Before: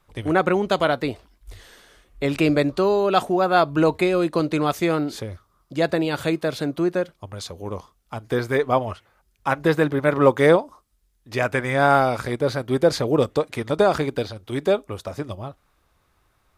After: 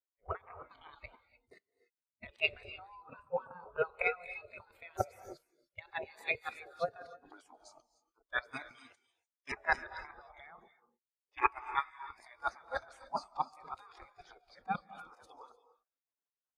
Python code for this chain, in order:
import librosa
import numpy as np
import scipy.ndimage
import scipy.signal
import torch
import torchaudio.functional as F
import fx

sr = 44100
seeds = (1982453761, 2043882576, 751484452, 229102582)

y = fx.level_steps(x, sr, step_db=22)
y = fx.high_shelf(y, sr, hz=2800.0, db=-11.5, at=(2.7, 3.6))
y = fx.auto_swell(y, sr, attack_ms=111.0)
y = fx.over_compress(y, sr, threshold_db=-29.0, ratio=-0.5)
y = fx.weighting(y, sr, curve='ITU-R 468', at=(8.51, 9.52))
y = fx.echo_wet_highpass(y, sr, ms=244, feedback_pct=32, hz=3800.0, wet_db=-4.0)
y = fx.spec_gate(y, sr, threshold_db=-15, keep='weak')
y = fx.filter_lfo_notch(y, sr, shape='square', hz=2.0, low_hz=210.0, high_hz=3300.0, q=2.3)
y = fx.rev_gated(y, sr, seeds[0], gate_ms=330, shape='rising', drr_db=5.0)
y = fx.spectral_expand(y, sr, expansion=2.5)
y = F.gain(torch.from_numpy(y), 8.5).numpy()